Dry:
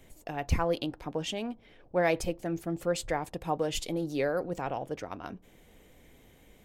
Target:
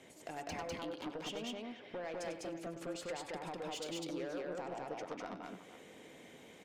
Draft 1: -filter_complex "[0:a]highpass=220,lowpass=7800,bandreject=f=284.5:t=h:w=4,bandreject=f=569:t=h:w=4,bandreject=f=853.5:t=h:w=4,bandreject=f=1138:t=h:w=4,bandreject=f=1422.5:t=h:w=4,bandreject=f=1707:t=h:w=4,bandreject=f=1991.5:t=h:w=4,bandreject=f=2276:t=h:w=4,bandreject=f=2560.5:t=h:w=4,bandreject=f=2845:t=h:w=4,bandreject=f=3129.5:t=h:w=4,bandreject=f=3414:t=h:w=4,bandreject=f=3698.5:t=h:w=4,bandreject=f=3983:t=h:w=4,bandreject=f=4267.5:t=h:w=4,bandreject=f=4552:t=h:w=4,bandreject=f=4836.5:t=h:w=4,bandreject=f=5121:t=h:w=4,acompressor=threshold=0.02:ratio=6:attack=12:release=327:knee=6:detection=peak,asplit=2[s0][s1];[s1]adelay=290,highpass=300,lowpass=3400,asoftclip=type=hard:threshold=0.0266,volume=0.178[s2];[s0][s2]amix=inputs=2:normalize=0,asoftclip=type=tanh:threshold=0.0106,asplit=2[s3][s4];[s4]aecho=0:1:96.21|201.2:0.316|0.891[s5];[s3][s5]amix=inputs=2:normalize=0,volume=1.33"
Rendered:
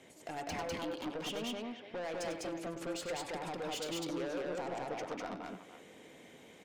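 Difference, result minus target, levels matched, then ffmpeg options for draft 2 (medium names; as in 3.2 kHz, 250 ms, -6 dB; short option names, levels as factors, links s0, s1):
compression: peak gain reduction -6.5 dB
-filter_complex "[0:a]highpass=220,lowpass=7800,bandreject=f=284.5:t=h:w=4,bandreject=f=569:t=h:w=4,bandreject=f=853.5:t=h:w=4,bandreject=f=1138:t=h:w=4,bandreject=f=1422.5:t=h:w=4,bandreject=f=1707:t=h:w=4,bandreject=f=1991.5:t=h:w=4,bandreject=f=2276:t=h:w=4,bandreject=f=2560.5:t=h:w=4,bandreject=f=2845:t=h:w=4,bandreject=f=3129.5:t=h:w=4,bandreject=f=3414:t=h:w=4,bandreject=f=3698.5:t=h:w=4,bandreject=f=3983:t=h:w=4,bandreject=f=4267.5:t=h:w=4,bandreject=f=4552:t=h:w=4,bandreject=f=4836.5:t=h:w=4,bandreject=f=5121:t=h:w=4,acompressor=threshold=0.00794:ratio=6:attack=12:release=327:knee=6:detection=peak,asplit=2[s0][s1];[s1]adelay=290,highpass=300,lowpass=3400,asoftclip=type=hard:threshold=0.0266,volume=0.178[s2];[s0][s2]amix=inputs=2:normalize=0,asoftclip=type=tanh:threshold=0.0106,asplit=2[s3][s4];[s4]aecho=0:1:96.21|201.2:0.316|0.891[s5];[s3][s5]amix=inputs=2:normalize=0,volume=1.33"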